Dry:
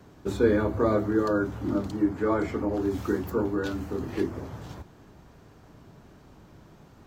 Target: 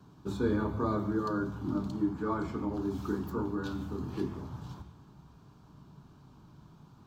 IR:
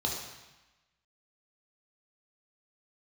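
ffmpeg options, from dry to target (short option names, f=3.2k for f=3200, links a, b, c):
-filter_complex "[0:a]equalizer=f=125:t=o:w=1:g=10,equalizer=f=500:t=o:w=1:g=-8,equalizer=f=1k:t=o:w=1:g=8,equalizer=f=2k:t=o:w=1:g=-5,equalizer=f=4k:t=o:w=1:g=5,asplit=2[a][b];[1:a]atrim=start_sample=2205,afade=t=out:st=0.15:d=0.01,atrim=end_sample=7056,asetrate=22491,aresample=44100[c];[b][c]afir=irnorm=-1:irlink=0,volume=-18dB[d];[a][d]amix=inputs=2:normalize=0,volume=-8.5dB"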